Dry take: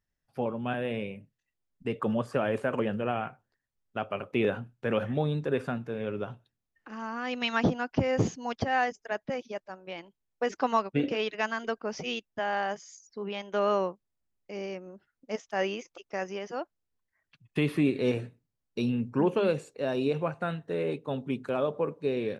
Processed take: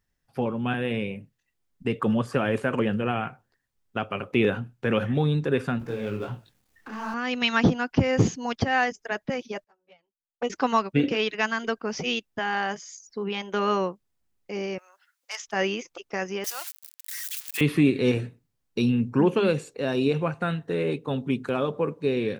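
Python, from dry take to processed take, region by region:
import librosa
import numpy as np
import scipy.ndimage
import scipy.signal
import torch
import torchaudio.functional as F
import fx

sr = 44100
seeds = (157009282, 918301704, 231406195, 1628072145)

y = fx.chain(x, sr, fx.law_mismatch(coded='mu'),
    fx.detune_double(cents=50), at=(5.79, 7.14))
y = fx.chain(y, sr, fx.env_flanger(rest_ms=7.1, full_db=-29.0),
    fx.upward_expand(threshold_db=-45.0, expansion=2.5), at=(9.64, 10.5))
y = fx.chain(y, sr, fx.highpass(hz=950.0, slope=24),
    fx.high_shelf(hz=2500.0, db=8.0),
    fx.transformer_sat(knee_hz=3000.0), at=(14.78, 15.47))
y = fx.chain(y, sr, fx.crossing_spikes(level_db=-29.5),
    fx.highpass(hz=1400.0, slope=12), at=(16.44, 17.61))
y = fx.notch(y, sr, hz=610.0, q=12.0)
y = fx.dynamic_eq(y, sr, hz=680.0, q=0.79, threshold_db=-39.0, ratio=4.0, max_db=-5)
y = y * 10.0 ** (7.0 / 20.0)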